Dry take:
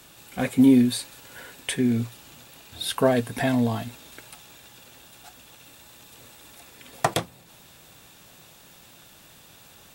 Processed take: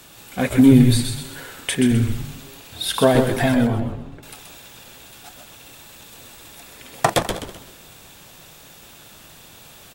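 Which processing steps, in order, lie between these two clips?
regenerating reverse delay 0.101 s, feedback 42%, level -10.5 dB; 3.54–4.23 band-pass 310 Hz, Q 0.55; frequency-shifting echo 0.128 s, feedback 38%, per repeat -130 Hz, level -6 dB; gain +4.5 dB

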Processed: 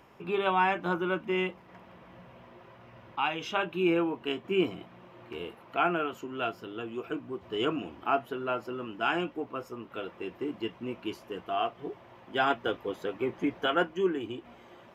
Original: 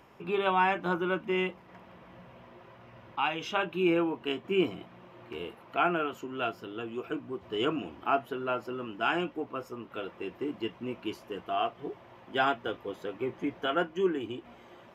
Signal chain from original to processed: 12.5–13.95 harmonic-percussive split percussive +4 dB

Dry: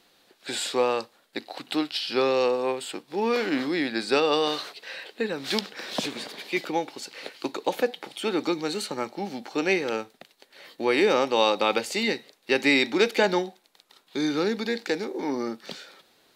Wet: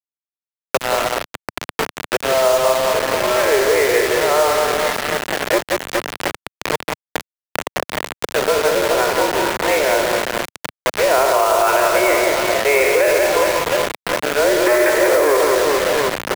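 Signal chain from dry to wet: spectral trails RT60 0.57 s; auto swell 0.351 s; 14.66–15.37 sample leveller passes 5; Schroeder reverb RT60 0.33 s, combs from 32 ms, DRR 14.5 dB; mistuned SSB +140 Hz 150–2100 Hz; reverse bouncing-ball echo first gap 0.18 s, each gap 1.3×, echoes 5; bit-crush 5-bit; maximiser +13 dB; three-band squash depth 70%; gain -4 dB

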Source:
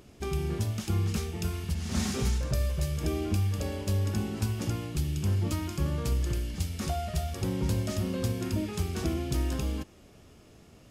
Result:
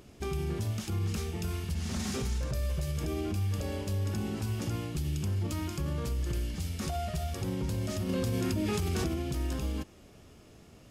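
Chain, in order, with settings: limiter -24.5 dBFS, peak gain reduction 8 dB; 8.09–9.08 fast leveller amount 100%

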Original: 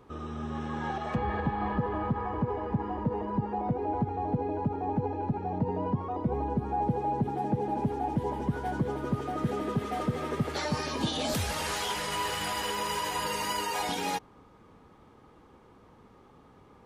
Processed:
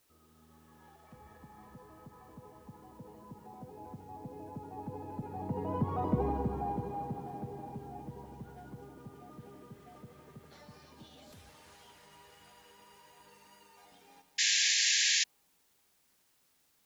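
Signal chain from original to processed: Doppler pass-by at 6.07, 7 m/s, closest 1.9 m; requantised 12-bit, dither triangular; reverb RT60 4.9 s, pre-delay 33 ms, DRR 8.5 dB; painted sound noise, 14.38–15.24, 1600–7400 Hz -28 dBFS

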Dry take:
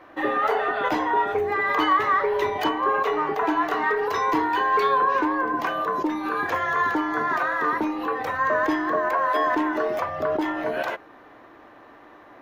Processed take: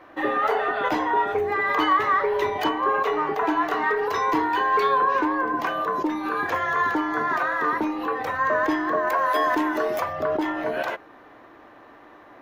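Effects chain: 9.07–10.13 high shelf 5600 Hz +11.5 dB

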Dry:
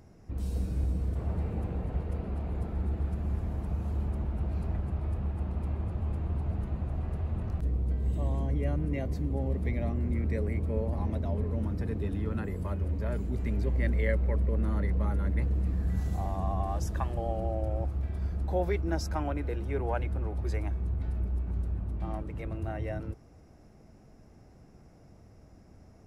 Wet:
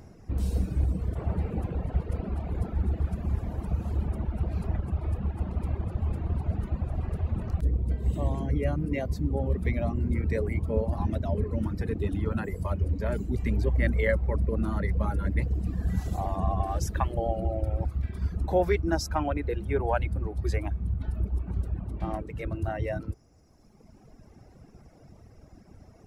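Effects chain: reverb removal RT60 1.9 s; gain +6.5 dB

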